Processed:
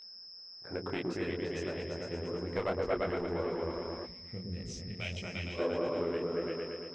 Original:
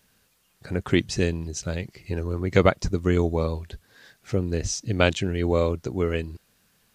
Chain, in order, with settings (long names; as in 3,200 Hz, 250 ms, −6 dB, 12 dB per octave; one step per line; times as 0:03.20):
adaptive Wiener filter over 15 samples
echo whose low-pass opens from repeat to repeat 114 ms, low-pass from 400 Hz, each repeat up 2 octaves, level 0 dB
gain on a spectral selection 0:04.05–0:05.59, 240–1,800 Hz −15 dB
gain into a clipping stage and back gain 12 dB
steady tone 5,200 Hz −34 dBFS
downward compressor, threshold −22 dBFS, peak gain reduction 7.5 dB
bass and treble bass −13 dB, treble −14 dB
micro pitch shift up and down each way 59 cents